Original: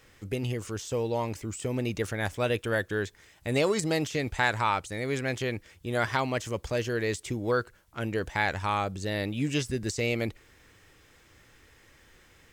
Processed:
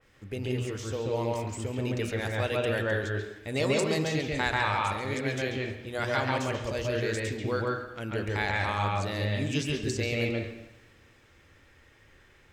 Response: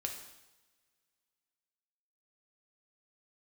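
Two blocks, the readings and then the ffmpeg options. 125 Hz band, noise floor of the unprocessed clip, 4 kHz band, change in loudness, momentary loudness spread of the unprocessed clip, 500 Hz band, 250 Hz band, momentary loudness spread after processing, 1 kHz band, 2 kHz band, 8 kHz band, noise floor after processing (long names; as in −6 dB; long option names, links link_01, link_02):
+1.5 dB, −59 dBFS, +1.0 dB, 0.0 dB, 7 LU, 0.0 dB, −0.5 dB, 7 LU, −0.5 dB, 0.0 dB, −2.0 dB, −59 dBFS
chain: -filter_complex "[0:a]highshelf=frequency=6600:gain=-7,bandreject=frequency=60.07:width_type=h:width=4,bandreject=frequency=120.14:width_type=h:width=4,bandreject=frequency=180.21:width_type=h:width=4,bandreject=frequency=240.28:width_type=h:width=4,bandreject=frequency=300.35:width_type=h:width=4,bandreject=frequency=360.42:width_type=h:width=4,bandreject=frequency=420.49:width_type=h:width=4,bandreject=frequency=480.56:width_type=h:width=4,bandreject=frequency=540.63:width_type=h:width=4,bandreject=frequency=600.7:width_type=h:width=4,bandreject=frequency=660.77:width_type=h:width=4,bandreject=frequency=720.84:width_type=h:width=4,bandreject=frequency=780.91:width_type=h:width=4,bandreject=frequency=840.98:width_type=h:width=4,bandreject=frequency=901.05:width_type=h:width=4,bandreject=frequency=961.12:width_type=h:width=4,bandreject=frequency=1021.19:width_type=h:width=4,bandreject=frequency=1081.26:width_type=h:width=4,bandreject=frequency=1141.33:width_type=h:width=4,bandreject=frequency=1201.4:width_type=h:width=4,bandreject=frequency=1261.47:width_type=h:width=4,bandreject=frequency=1321.54:width_type=h:width=4,bandreject=frequency=1381.61:width_type=h:width=4,bandreject=frequency=1441.68:width_type=h:width=4,bandreject=frequency=1501.75:width_type=h:width=4,bandreject=frequency=1561.82:width_type=h:width=4,bandreject=frequency=1621.89:width_type=h:width=4,bandreject=frequency=1681.96:width_type=h:width=4,bandreject=frequency=1742.03:width_type=h:width=4,asplit=2[link_01][link_02];[1:a]atrim=start_sample=2205,lowpass=3400,adelay=137[link_03];[link_02][link_03]afir=irnorm=-1:irlink=0,volume=2dB[link_04];[link_01][link_04]amix=inputs=2:normalize=0,adynamicequalizer=threshold=0.00891:dfrequency=2900:dqfactor=0.7:tfrequency=2900:tqfactor=0.7:attack=5:release=100:ratio=0.375:range=3:mode=boostabove:tftype=highshelf,volume=-4dB"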